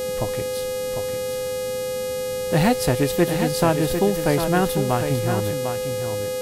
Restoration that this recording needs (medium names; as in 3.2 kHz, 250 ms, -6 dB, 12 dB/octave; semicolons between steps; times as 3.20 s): de-hum 414.3 Hz, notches 33; band-stop 510 Hz, Q 30; noise print and reduce 30 dB; inverse comb 750 ms -7.5 dB